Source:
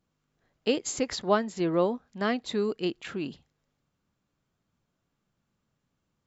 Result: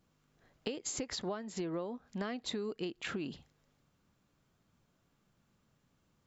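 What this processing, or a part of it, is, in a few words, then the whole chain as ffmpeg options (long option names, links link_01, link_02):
serial compression, peaks first: -af "acompressor=threshold=-34dB:ratio=5,acompressor=threshold=-42dB:ratio=2.5,volume=4.5dB"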